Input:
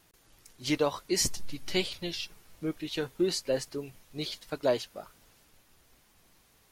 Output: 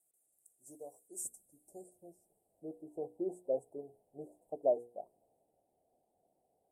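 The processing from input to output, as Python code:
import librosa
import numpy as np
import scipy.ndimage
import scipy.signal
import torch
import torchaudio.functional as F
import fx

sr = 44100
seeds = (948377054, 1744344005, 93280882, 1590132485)

y = scipy.signal.sosfilt(scipy.signal.cheby1(5, 1.0, [730.0, 8000.0], 'bandstop', fs=sr, output='sos'), x)
y = fx.hum_notches(y, sr, base_hz=60, count=8)
y = fx.filter_sweep_bandpass(y, sr, from_hz=4900.0, to_hz=1000.0, start_s=1.31, end_s=2.97, q=1.6)
y = F.gain(torch.from_numpy(y), 4.0).numpy()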